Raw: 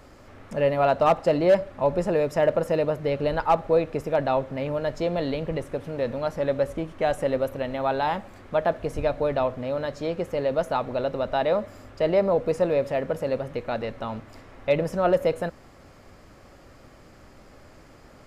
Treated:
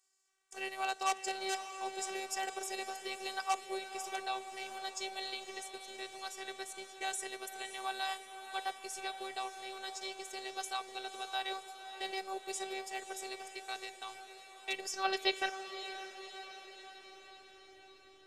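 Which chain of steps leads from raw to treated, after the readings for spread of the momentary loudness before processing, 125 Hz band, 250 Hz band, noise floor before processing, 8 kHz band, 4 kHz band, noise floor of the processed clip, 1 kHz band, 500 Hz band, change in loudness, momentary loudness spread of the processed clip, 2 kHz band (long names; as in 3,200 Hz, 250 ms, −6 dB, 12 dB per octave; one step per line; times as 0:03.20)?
9 LU, below −40 dB, −21.0 dB, −50 dBFS, can't be measured, +1.5 dB, −58 dBFS, −10.0 dB, −22.5 dB, −14.5 dB, 13 LU, −5.0 dB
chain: noise gate −36 dBFS, range −21 dB
transient designer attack +1 dB, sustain −3 dB
band-pass filter sweep 7,800 Hz → 230 Hz, 0:14.74–0:17.29
phases set to zero 384 Hz
feedback delay with all-pass diffusion 562 ms, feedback 62%, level −10.5 dB
level +15.5 dB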